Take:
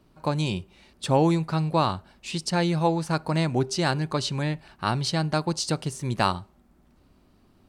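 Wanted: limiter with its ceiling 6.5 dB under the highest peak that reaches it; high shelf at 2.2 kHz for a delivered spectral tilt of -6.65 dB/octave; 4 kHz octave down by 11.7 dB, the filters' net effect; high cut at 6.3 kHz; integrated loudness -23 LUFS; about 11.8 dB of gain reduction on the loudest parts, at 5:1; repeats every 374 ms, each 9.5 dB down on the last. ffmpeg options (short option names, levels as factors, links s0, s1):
-af "lowpass=6300,highshelf=f=2200:g=-7,equalizer=f=4000:t=o:g=-7,acompressor=threshold=0.0282:ratio=5,alimiter=level_in=1.33:limit=0.0631:level=0:latency=1,volume=0.75,aecho=1:1:374|748|1122|1496:0.335|0.111|0.0365|0.012,volume=4.73"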